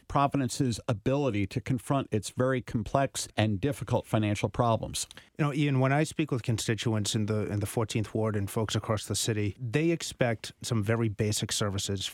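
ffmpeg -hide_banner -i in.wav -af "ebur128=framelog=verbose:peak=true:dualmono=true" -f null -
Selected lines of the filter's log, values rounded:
Integrated loudness:
  I:         -26.5 LUFS
  Threshold: -36.5 LUFS
Loudness range:
  LRA:         1.3 LU
  Threshold: -46.5 LUFS
  LRA low:   -27.1 LUFS
  LRA high:  -25.8 LUFS
True peak:
  Peak:       -8.4 dBFS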